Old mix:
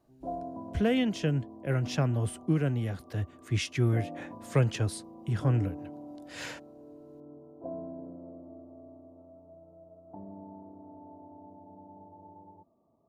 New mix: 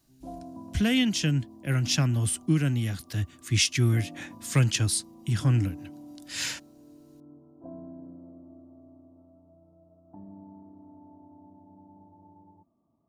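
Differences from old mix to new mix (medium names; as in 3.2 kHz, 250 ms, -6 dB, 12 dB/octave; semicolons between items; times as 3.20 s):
speech +3.5 dB; master: add FFT filter 310 Hz 0 dB, 440 Hz -11 dB, 5.4 kHz +11 dB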